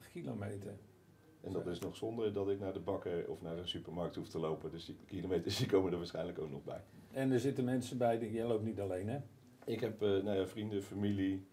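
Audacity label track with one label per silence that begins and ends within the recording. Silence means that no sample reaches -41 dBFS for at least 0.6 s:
0.730000	1.440000	silence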